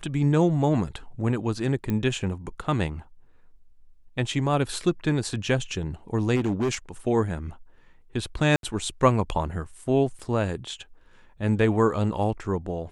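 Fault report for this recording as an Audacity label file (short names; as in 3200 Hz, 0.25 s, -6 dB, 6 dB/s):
1.900000	1.900000	pop -16 dBFS
6.350000	6.750000	clipped -20.5 dBFS
8.560000	8.630000	gap 72 ms
10.190000	10.190000	gap 4.5 ms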